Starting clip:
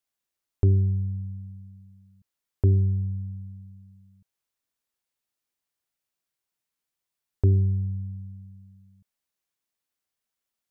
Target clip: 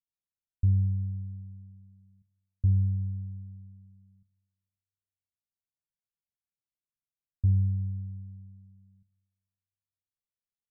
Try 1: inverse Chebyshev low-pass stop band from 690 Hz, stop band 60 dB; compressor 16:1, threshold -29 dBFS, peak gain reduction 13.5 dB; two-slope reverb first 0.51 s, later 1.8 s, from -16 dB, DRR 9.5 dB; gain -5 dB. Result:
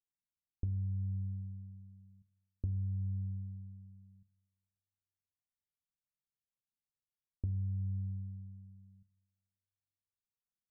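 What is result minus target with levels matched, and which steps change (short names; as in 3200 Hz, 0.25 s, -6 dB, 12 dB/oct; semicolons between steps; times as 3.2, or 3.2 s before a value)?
compressor: peak gain reduction +13.5 dB
remove: compressor 16:1, threshold -29 dBFS, peak gain reduction 13.5 dB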